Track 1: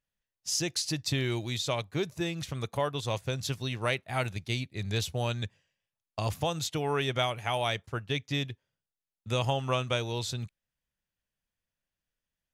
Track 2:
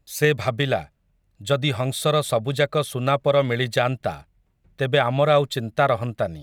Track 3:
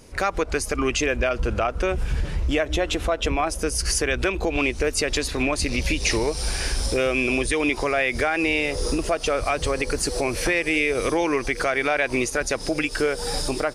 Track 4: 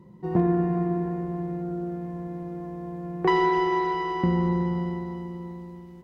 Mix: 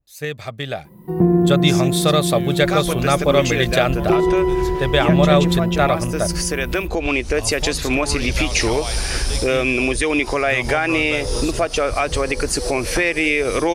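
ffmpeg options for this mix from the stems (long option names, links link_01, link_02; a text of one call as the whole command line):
ffmpeg -i stem1.wav -i stem2.wav -i stem3.wav -i stem4.wav -filter_complex "[0:a]highshelf=frequency=9600:gain=11,adelay=1200,volume=-15dB,asplit=3[link_01][link_02][link_03];[link_01]atrim=end=4.7,asetpts=PTS-STARTPTS,afade=type=out:start_time=4.696:duration=0.004:curve=hsin[link_04];[link_02]atrim=start=4.7:end=6.66,asetpts=PTS-STARTPTS,volume=0[link_05];[link_03]atrim=start=6.66,asetpts=PTS-STARTPTS,afade=type=in:duration=0.004:curve=hsin[link_06];[link_04][link_05][link_06]concat=n=3:v=0:a=1[link_07];[1:a]adynamicequalizer=threshold=0.0251:dfrequency=2200:dqfactor=0.7:tfrequency=2200:tqfactor=0.7:attack=5:release=100:ratio=0.375:range=2:mode=boostabove:tftype=highshelf,volume=-8.5dB[link_08];[2:a]adelay=2500,volume=-11dB[link_09];[3:a]acrossover=split=490[link_10][link_11];[link_11]acompressor=threshold=-49dB:ratio=2[link_12];[link_10][link_12]amix=inputs=2:normalize=0,aexciter=amount=12.4:drive=7.4:freq=9300,adelay=850,volume=-1.5dB[link_13];[link_07][link_08][link_09][link_13]amix=inputs=4:normalize=0,dynaudnorm=framelen=150:gausssize=13:maxgain=15dB" out.wav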